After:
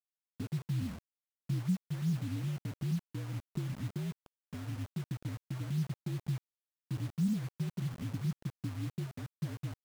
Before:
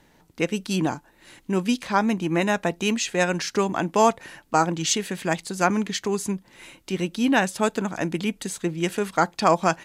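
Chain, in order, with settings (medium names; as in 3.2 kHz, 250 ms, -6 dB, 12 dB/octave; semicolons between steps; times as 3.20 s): compression 2:1, threshold -28 dBFS, peak gain reduction 9 dB; four-pole ladder low-pass 290 Hz, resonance 45%; frequency shift -60 Hz; bit crusher 8-bit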